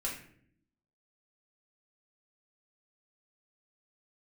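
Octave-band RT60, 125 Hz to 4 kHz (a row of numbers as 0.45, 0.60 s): 0.95, 1.1, 0.75, 0.50, 0.55, 0.40 s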